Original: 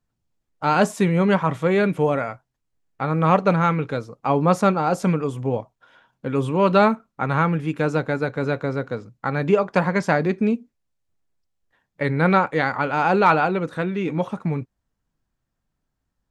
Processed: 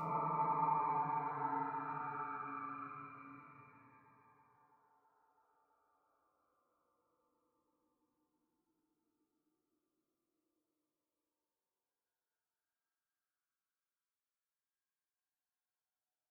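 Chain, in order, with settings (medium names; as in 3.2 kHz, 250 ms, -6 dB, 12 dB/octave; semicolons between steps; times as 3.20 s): in parallel at 0 dB: compressor with a negative ratio -25 dBFS, ratio -0.5; on the sum: dynamic bell 370 Hz, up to -7 dB, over -32 dBFS, Q 1.2; level held to a coarse grid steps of 23 dB; expander -59 dBFS; wah-wah 2 Hz 300–1700 Hz, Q 18; Paulstretch 23×, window 0.25 s, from 14.51 s; on a send: feedback echo behind a band-pass 329 ms, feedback 82%, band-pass 670 Hz, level -23 dB; on the sum: FDN reverb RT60 1.3 s, low-frequency decay 0.75×, high-frequency decay 0.6×, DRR -2 dB; Shepard-style phaser falling 0.28 Hz; trim +7.5 dB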